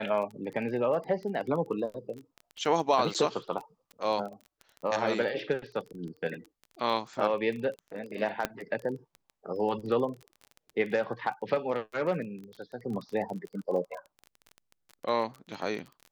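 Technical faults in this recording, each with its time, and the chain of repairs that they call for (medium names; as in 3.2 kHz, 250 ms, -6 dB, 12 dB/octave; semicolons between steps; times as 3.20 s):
crackle 20 per s -36 dBFS
3.14–3.15 s: dropout 7.6 ms
8.45 s: pop -13 dBFS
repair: de-click; interpolate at 3.14 s, 7.6 ms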